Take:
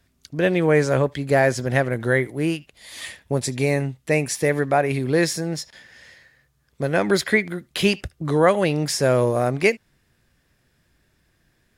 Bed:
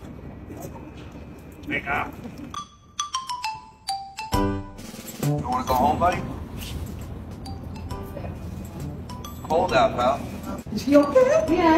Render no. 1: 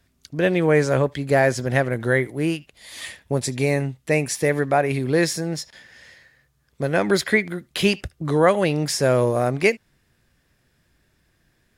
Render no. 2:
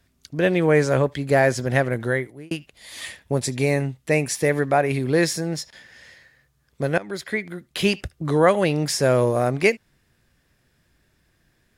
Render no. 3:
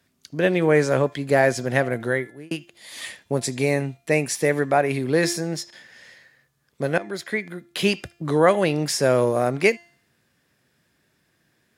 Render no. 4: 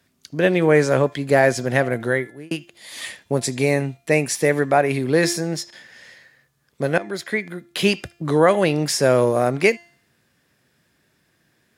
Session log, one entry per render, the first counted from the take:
no processing that can be heard
0:01.96–0:02.51: fade out; 0:06.98–0:08.04: fade in, from −17.5 dB
high-pass filter 140 Hz 12 dB per octave; hum removal 344.6 Hz, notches 25
level +2.5 dB; brickwall limiter −3 dBFS, peak gain reduction 2.5 dB

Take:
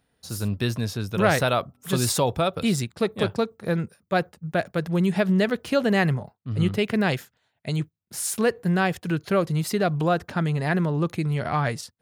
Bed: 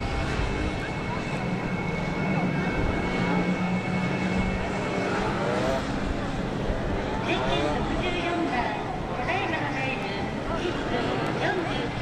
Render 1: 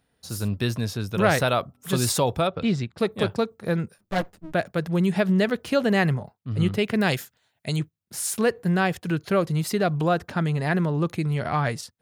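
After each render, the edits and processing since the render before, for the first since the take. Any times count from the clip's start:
0:02.47–0:02.98: high-frequency loss of the air 170 metres
0:03.98–0:04.53: lower of the sound and its delayed copy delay 9.7 ms
0:07.01–0:07.79: high-shelf EQ 4,400 Hz +8.5 dB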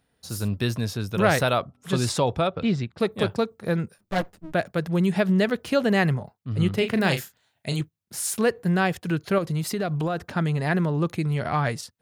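0:01.58–0:03.00: high-frequency loss of the air 54 metres
0:06.74–0:07.81: double-tracking delay 36 ms −8 dB
0:09.38–0:10.27: downward compressor, threshold −22 dBFS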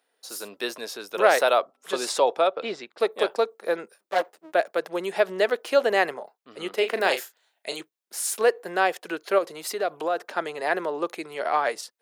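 high-pass filter 380 Hz 24 dB per octave
dynamic equaliser 650 Hz, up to +4 dB, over −36 dBFS, Q 0.78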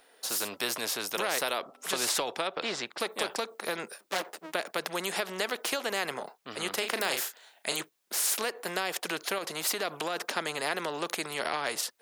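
downward compressor, threshold −23 dBFS, peak gain reduction 10.5 dB
every bin compressed towards the loudest bin 2 to 1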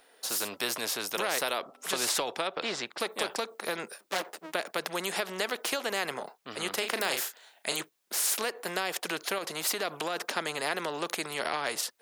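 no processing that can be heard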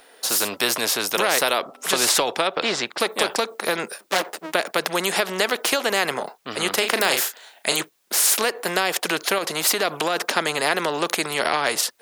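level +10 dB

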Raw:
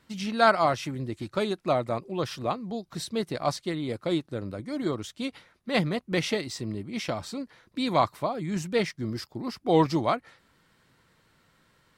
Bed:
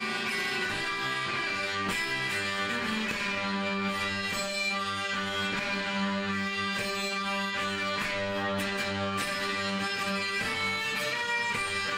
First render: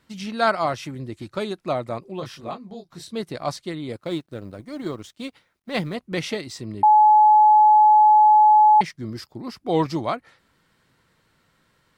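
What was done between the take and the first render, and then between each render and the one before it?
0:02.19–0:03.11: micro pitch shift up and down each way 15 cents → 28 cents
0:03.96–0:05.95: mu-law and A-law mismatch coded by A
0:06.83–0:08.81: beep over 852 Hz −10 dBFS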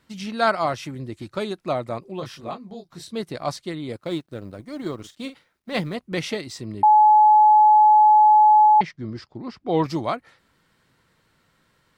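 0:04.95–0:05.80: double-tracking delay 45 ms −11 dB
0:08.66–0:09.84: high-frequency loss of the air 130 metres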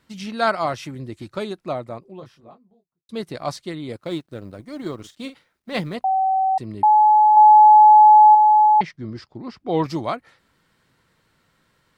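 0:01.20–0:03.09: fade out and dull
0:06.04–0:06.58: beep over 764 Hz −16 dBFS
0:07.32–0:08.35: double-tracking delay 48 ms −3 dB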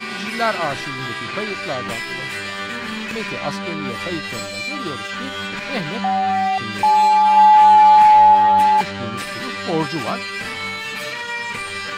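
mix in bed +3.5 dB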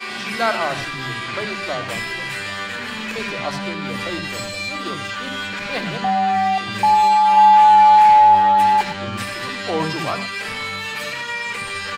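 multiband delay without the direct sound highs, lows 70 ms, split 270 Hz
reverb whose tail is shaped and stops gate 130 ms rising, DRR 11 dB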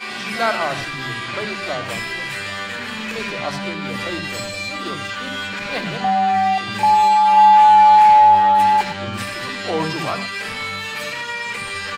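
backwards echo 42 ms −14.5 dB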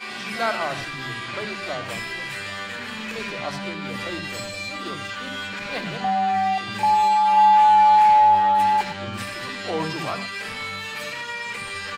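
level −4.5 dB

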